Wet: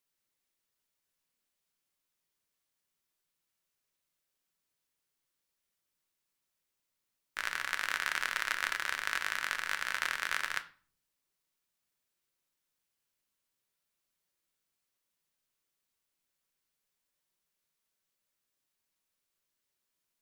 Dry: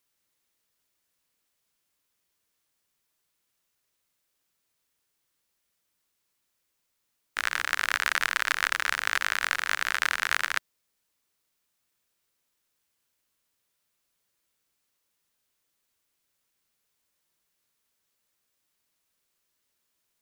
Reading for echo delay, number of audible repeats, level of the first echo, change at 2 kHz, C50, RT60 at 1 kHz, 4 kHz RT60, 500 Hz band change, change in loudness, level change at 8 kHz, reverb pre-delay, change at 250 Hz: none, none, none, -7.0 dB, 17.0 dB, 0.40 s, 0.35 s, -7.0 dB, -7.0 dB, -7.0 dB, 5 ms, -6.5 dB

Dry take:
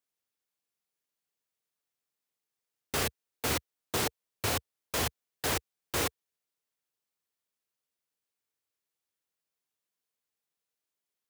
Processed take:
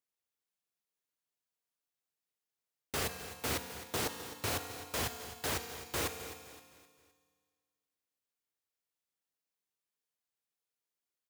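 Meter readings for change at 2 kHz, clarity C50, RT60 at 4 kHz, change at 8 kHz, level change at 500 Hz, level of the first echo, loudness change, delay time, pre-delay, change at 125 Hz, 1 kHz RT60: -4.0 dB, 7.0 dB, 1.9 s, -4.0 dB, -4.0 dB, -13.5 dB, -4.5 dB, 0.259 s, 33 ms, -4.5 dB, 1.9 s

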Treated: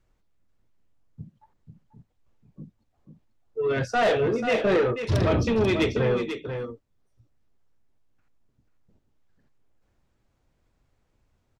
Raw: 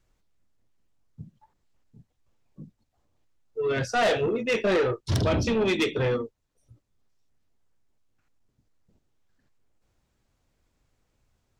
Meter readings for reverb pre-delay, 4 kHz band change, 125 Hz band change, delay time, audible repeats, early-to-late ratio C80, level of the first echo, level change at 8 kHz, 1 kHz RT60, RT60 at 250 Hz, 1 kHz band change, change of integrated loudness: none, -2.0 dB, +2.5 dB, 0.489 s, 1, none, -8.0 dB, -4.0 dB, none, none, +1.5 dB, +1.0 dB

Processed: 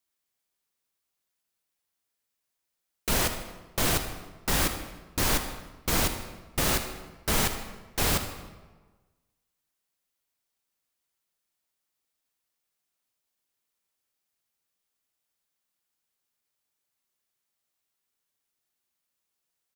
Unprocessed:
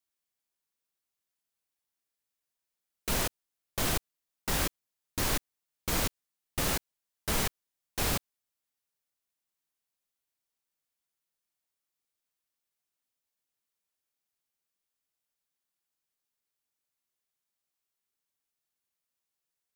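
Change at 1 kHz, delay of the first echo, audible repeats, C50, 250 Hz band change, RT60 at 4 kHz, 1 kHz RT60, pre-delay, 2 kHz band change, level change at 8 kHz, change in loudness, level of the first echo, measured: +5.0 dB, 78 ms, 2, 7.5 dB, +4.5 dB, 0.90 s, 1.3 s, 34 ms, +5.0 dB, +4.5 dB, +4.0 dB, -14.5 dB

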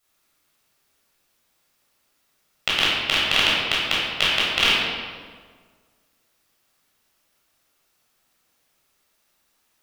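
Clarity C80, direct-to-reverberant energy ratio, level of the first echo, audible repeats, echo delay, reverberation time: 1.0 dB, -8.0 dB, none, none, none, 1.6 s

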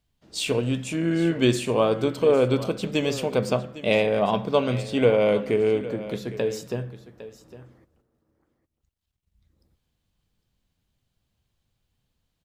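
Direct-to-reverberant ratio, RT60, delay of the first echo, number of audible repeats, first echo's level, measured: none, none, 0.807 s, 1, -15.5 dB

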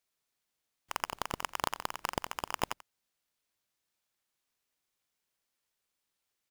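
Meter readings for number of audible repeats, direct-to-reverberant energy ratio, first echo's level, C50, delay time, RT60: 1, none, -17.5 dB, none, 88 ms, none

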